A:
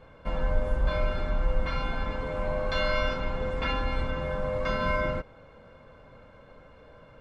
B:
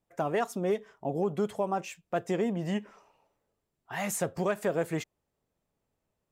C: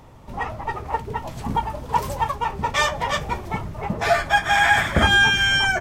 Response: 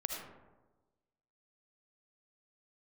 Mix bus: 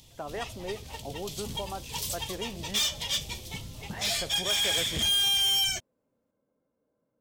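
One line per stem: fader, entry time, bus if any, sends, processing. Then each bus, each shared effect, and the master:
−15.0 dB, 0.00 s, no send, resonant band-pass 260 Hz, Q 1.7
−6.5 dB, 0.00 s, no send, no processing
−3.5 dB, 0.00 s, no send, drawn EQ curve 120 Hz 0 dB, 1,400 Hz −20 dB, 3,300 Hz +11 dB; soft clipping −19.5 dBFS, distortion −8 dB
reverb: not used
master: low-shelf EQ 260 Hz −7 dB

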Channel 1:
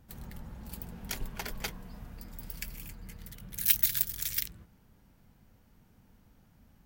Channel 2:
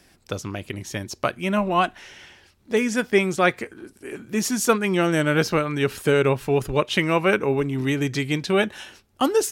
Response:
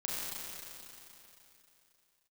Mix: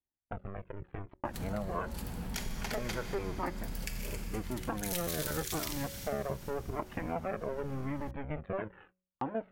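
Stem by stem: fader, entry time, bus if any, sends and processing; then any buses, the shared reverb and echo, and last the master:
+3.0 dB, 1.25 s, send −15 dB, low-pass filter 11,000 Hz 12 dB per octave; envelope flattener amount 50%; automatic ducking −10 dB, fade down 1.70 s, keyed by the second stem
−2.5 dB, 0.00 s, no send, sub-harmonics by changed cycles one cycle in 2, muted; Gaussian smoothing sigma 5 samples; flanger whose copies keep moving one way falling 0.88 Hz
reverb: on, RT60 3.1 s, pre-delay 30 ms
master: noise gate −55 dBFS, range −31 dB; hum removal 185.1 Hz, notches 3; downward compressor 2.5 to 1, threshold −33 dBFS, peak gain reduction 6.5 dB

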